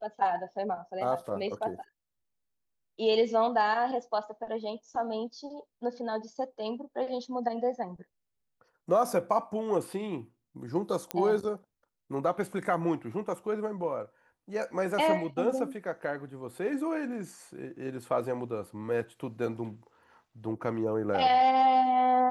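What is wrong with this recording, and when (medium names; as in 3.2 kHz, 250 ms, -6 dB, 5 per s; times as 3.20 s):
11.11 s: pop -14 dBFS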